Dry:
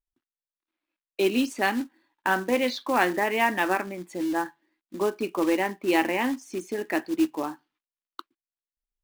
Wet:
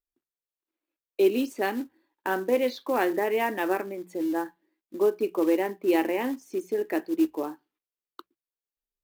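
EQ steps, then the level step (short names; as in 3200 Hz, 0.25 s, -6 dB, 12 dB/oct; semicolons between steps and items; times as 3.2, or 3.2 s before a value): bell 430 Hz +11 dB 1.1 oct; bell 14000 Hz +10.5 dB 0.32 oct; notches 60/120/180 Hz; -7.0 dB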